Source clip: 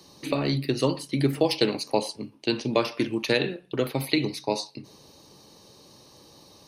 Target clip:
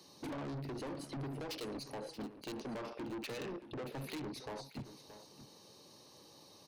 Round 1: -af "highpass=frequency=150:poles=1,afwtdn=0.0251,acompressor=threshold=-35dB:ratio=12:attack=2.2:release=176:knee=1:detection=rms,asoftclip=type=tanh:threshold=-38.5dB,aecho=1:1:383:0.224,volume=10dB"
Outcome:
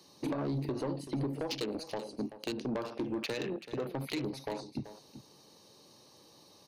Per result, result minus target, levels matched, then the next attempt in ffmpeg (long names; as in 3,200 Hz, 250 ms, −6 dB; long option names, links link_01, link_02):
echo 243 ms early; soft clipping: distortion −8 dB
-af "highpass=frequency=150:poles=1,afwtdn=0.0251,acompressor=threshold=-35dB:ratio=12:attack=2.2:release=176:knee=1:detection=rms,asoftclip=type=tanh:threshold=-38.5dB,aecho=1:1:626:0.224,volume=10dB"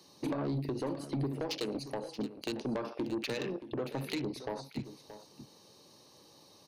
soft clipping: distortion −8 dB
-af "highpass=frequency=150:poles=1,afwtdn=0.0251,acompressor=threshold=-35dB:ratio=12:attack=2.2:release=176:knee=1:detection=rms,asoftclip=type=tanh:threshold=-50dB,aecho=1:1:626:0.224,volume=10dB"